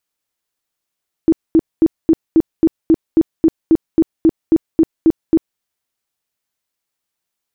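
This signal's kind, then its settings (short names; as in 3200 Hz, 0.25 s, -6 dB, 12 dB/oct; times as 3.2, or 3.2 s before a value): tone bursts 324 Hz, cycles 14, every 0.27 s, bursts 16, -6 dBFS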